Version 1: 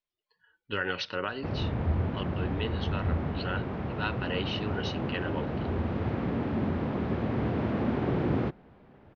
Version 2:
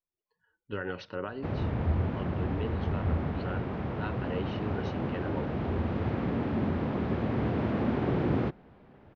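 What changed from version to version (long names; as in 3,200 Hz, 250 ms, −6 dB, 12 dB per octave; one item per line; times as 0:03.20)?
speech: add parametric band 3,800 Hz −14 dB 2.8 octaves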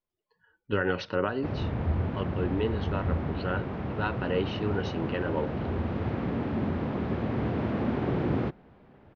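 speech +8.0 dB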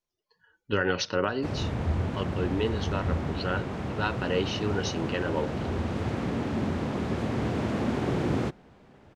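master: remove high-frequency loss of the air 290 metres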